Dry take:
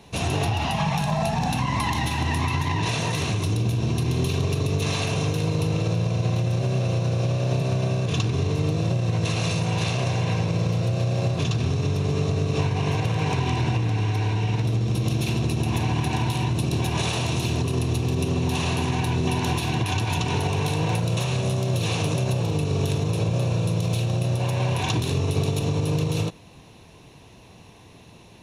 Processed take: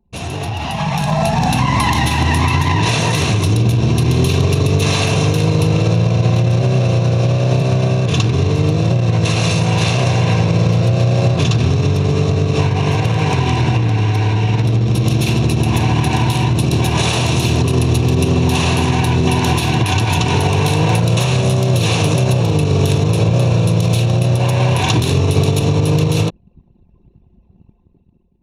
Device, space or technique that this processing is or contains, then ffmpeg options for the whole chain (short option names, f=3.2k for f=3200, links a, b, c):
voice memo with heavy noise removal: -af "anlmdn=1,dynaudnorm=f=390:g=5:m=12dB"